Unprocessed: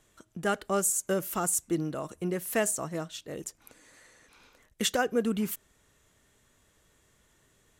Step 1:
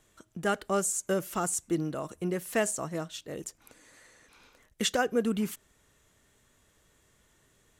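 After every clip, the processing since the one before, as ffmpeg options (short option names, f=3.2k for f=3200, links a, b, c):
-filter_complex "[0:a]acrossover=split=9300[a][b];[b]acompressor=threshold=-46dB:ratio=4:attack=1:release=60[c];[a][c]amix=inputs=2:normalize=0"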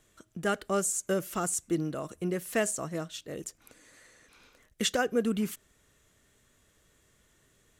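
-af "equalizer=f=890:t=o:w=0.46:g=-4.5"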